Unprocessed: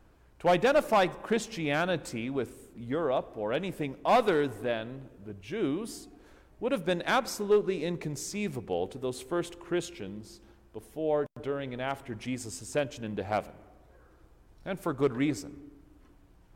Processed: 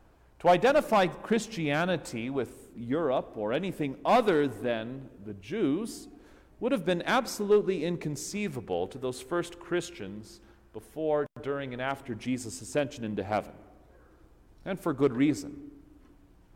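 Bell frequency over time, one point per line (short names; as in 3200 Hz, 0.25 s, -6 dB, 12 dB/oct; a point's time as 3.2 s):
bell +4 dB 0.96 oct
750 Hz
from 0.7 s 190 Hz
from 1.94 s 800 Hz
from 2.67 s 250 Hz
from 8.37 s 1500 Hz
from 11.91 s 270 Hz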